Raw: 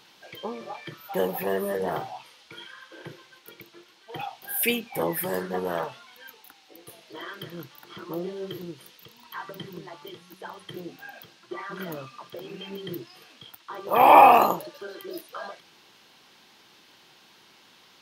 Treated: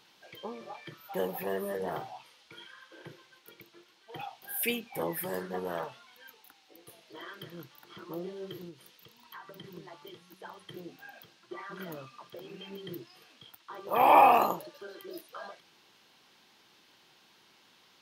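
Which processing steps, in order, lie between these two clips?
0:08.68–0:09.64: downward compressor, threshold −37 dBFS, peak gain reduction 6 dB
level −6.5 dB

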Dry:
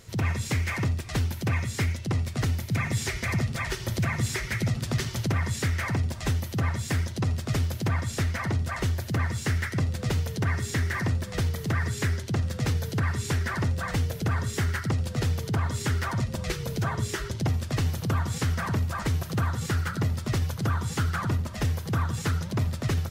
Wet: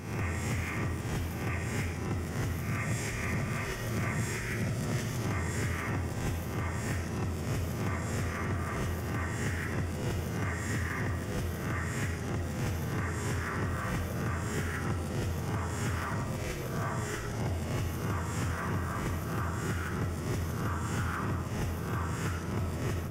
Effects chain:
peak hold with a rise ahead of every peak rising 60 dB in 0.88 s
parametric band 4,100 Hz −13.5 dB 0.33 octaves
on a send: convolution reverb RT60 0.90 s, pre-delay 35 ms, DRR 3.5 dB
on the sum: level −9 dB

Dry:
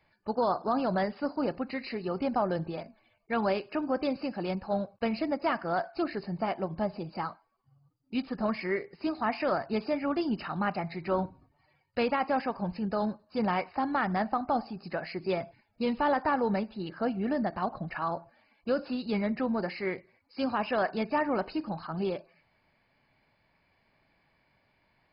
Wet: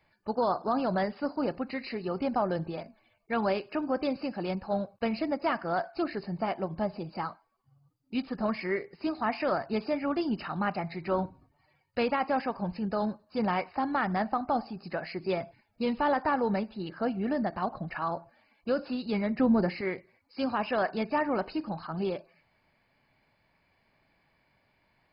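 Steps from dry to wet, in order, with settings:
0:19.39–0:19.81: low-shelf EQ 390 Hz +10 dB

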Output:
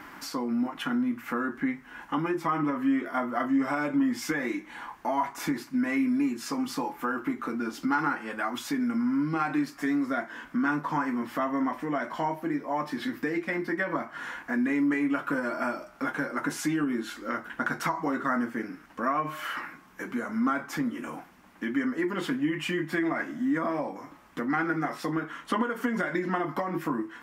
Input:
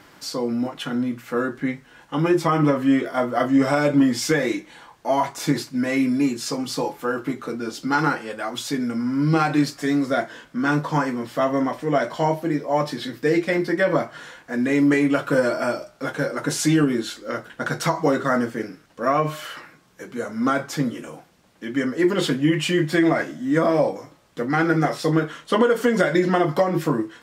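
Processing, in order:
downward compressor 2.5 to 1, threshold −34 dBFS, peak gain reduction 14 dB
octave-band graphic EQ 125/250/500/1,000/2,000/4,000/8,000 Hz −11/+6/−9/+5/+3/−8/−6 dB
level +3.5 dB

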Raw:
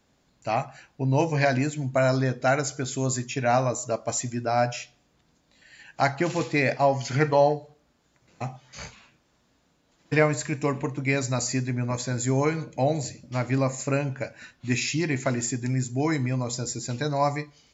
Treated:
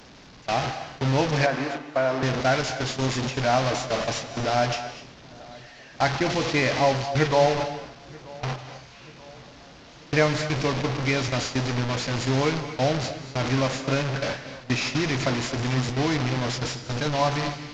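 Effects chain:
linear delta modulator 32 kbit/s, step −21 dBFS
noise gate with hold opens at −17 dBFS
0:01.46–0:02.23: three-way crossover with the lows and the highs turned down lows −17 dB, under 270 Hz, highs −13 dB, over 2,200 Hz
feedback echo with a low-pass in the loop 934 ms, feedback 53%, low-pass 2,000 Hz, level −22 dB
reverb whose tail is shaped and stops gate 280 ms rising, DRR 10 dB

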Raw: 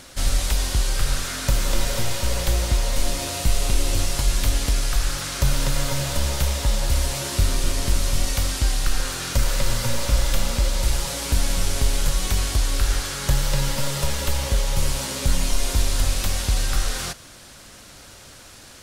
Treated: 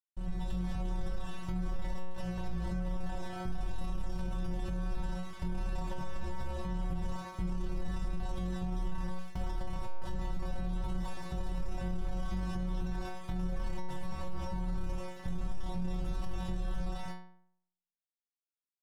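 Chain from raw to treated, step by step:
stylus tracing distortion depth 0.022 ms
moving average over 20 samples
parametric band 160 Hz −10 dB 0.66 octaves
comb filter 1.1 ms, depth 82%
single-tap delay 118 ms −23 dB
fuzz pedal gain 24 dB, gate −29 dBFS
automatic gain control
stiff-string resonator 180 Hz, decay 0.67 s, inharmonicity 0.002
brickwall limiter −28 dBFS, peak gain reduction 11 dB
low-shelf EQ 230 Hz +9.5 dB
level −5.5 dB

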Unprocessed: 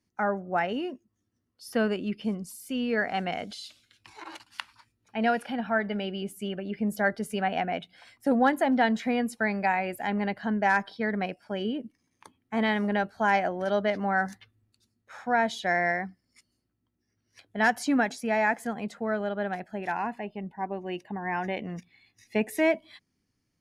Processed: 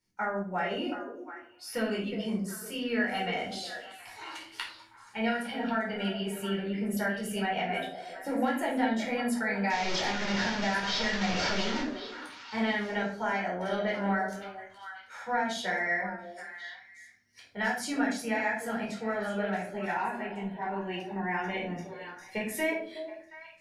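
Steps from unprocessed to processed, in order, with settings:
0:09.70–0:11.81: linear delta modulator 32 kbit/s, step −23 dBFS
tilt shelving filter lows −4 dB, about 1,200 Hz
downward compressor, threshold −27 dBFS, peak gain reduction 9 dB
echo through a band-pass that steps 363 ms, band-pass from 490 Hz, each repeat 1.4 octaves, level −6 dB
convolution reverb RT60 0.50 s, pre-delay 8 ms, DRR −4 dB
level −6.5 dB

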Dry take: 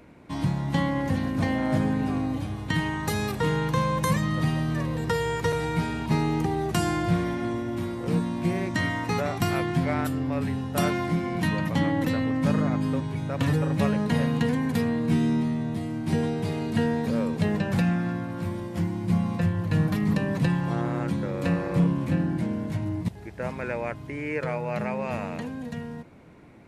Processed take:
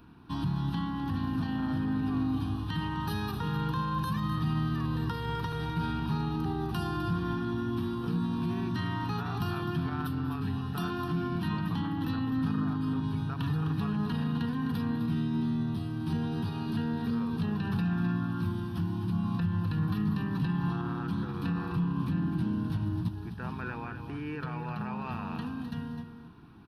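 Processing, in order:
dynamic equaliser 8,000 Hz, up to −5 dB, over −50 dBFS, Q 0.72
brickwall limiter −21.5 dBFS, peak gain reduction 7.5 dB
phaser with its sweep stopped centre 2,100 Hz, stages 6
single-tap delay 256 ms −10 dB
on a send at −16 dB: convolution reverb RT60 0.60 s, pre-delay 184 ms

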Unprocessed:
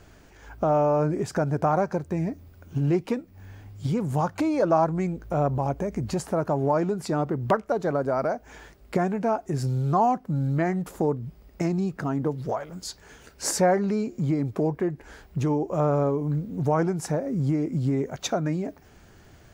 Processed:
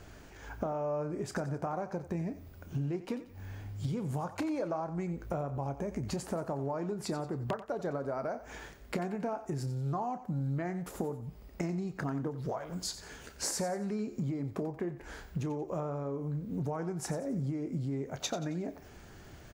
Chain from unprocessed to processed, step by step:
downward compressor 10 to 1, threshold −32 dBFS, peak gain reduction 16.5 dB
double-tracking delay 29 ms −13 dB
feedback echo with a high-pass in the loop 90 ms, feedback 41%, high-pass 420 Hz, level −12.5 dB

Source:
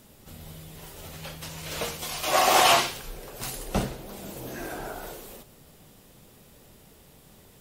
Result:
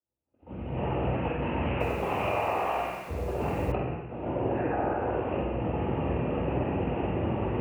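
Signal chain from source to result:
camcorder AGC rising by 17 dB per second
Chebyshev low-pass filter 2,800 Hz, order 8
noise gate −34 dBFS, range −43 dB
downward compressor 12 to 1, threshold −29 dBFS, peak gain reduction 13.5 dB
random phases in short frames
flutter between parallel walls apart 8.1 metres, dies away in 0.37 s
convolution reverb RT60 1.0 s, pre-delay 3 ms, DRR 0 dB
0:01.71–0:03.72: feedback echo at a low word length 94 ms, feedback 55%, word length 7 bits, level −6 dB
level −6 dB

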